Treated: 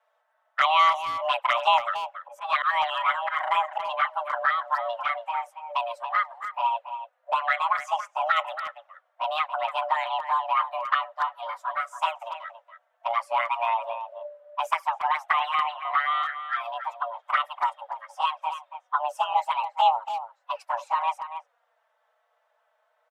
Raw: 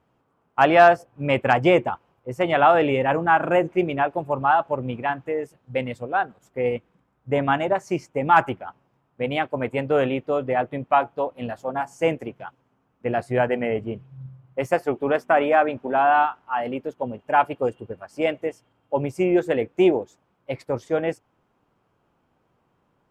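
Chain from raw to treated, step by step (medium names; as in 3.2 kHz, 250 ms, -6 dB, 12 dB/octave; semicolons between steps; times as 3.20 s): 1.61–4.33 s: slow attack 123 ms; frequency shift +460 Hz; touch-sensitive flanger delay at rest 4.6 ms, full sweep at -14 dBFS; speakerphone echo 280 ms, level -10 dB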